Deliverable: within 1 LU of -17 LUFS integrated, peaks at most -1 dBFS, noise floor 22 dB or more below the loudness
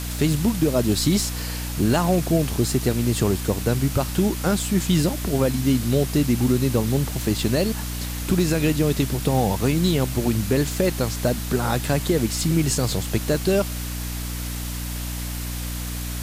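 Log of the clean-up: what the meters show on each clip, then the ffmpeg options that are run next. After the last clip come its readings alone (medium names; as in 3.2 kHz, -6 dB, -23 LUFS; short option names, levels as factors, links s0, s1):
hum 60 Hz; highest harmonic 300 Hz; hum level -27 dBFS; noise floor -29 dBFS; noise floor target -45 dBFS; loudness -22.5 LUFS; peak level -8.0 dBFS; loudness target -17.0 LUFS
-> -af "bandreject=f=60:t=h:w=6,bandreject=f=120:t=h:w=6,bandreject=f=180:t=h:w=6,bandreject=f=240:t=h:w=6,bandreject=f=300:t=h:w=6"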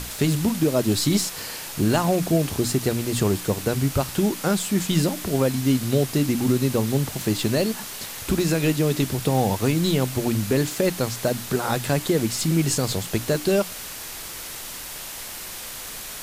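hum not found; noise floor -35 dBFS; noise floor target -46 dBFS
-> -af "afftdn=nr=11:nf=-35"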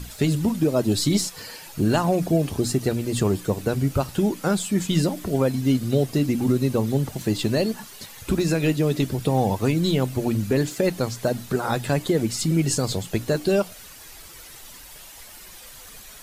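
noise floor -44 dBFS; noise floor target -45 dBFS
-> -af "afftdn=nr=6:nf=-44"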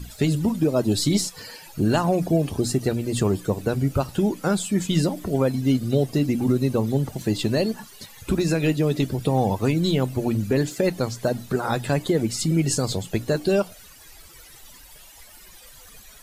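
noise floor -47 dBFS; loudness -23.5 LUFS; peak level -9.0 dBFS; loudness target -17.0 LUFS
-> -af "volume=2.11"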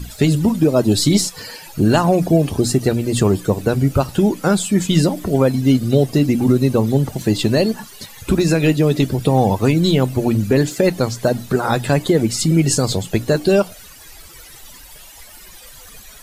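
loudness -17.0 LUFS; peak level -2.5 dBFS; noise floor -41 dBFS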